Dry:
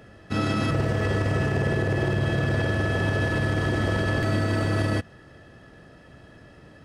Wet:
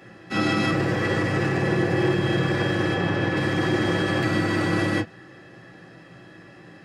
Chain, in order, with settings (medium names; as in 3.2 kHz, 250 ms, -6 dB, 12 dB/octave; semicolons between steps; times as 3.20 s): 2.94–3.37 s: low-pass 3.5 kHz 6 dB/octave; reverberation, pre-delay 3 ms, DRR -2 dB